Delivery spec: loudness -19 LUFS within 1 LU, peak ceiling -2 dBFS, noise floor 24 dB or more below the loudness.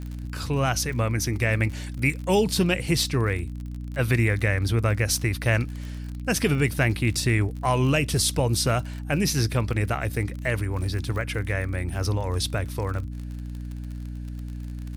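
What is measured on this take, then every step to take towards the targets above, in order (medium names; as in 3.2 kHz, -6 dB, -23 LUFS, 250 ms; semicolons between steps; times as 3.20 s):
tick rate 42 per s; hum 60 Hz; highest harmonic 300 Hz; hum level -32 dBFS; loudness -25.0 LUFS; peak level -9.5 dBFS; loudness target -19.0 LUFS
-> de-click; hum notches 60/120/180/240/300 Hz; trim +6 dB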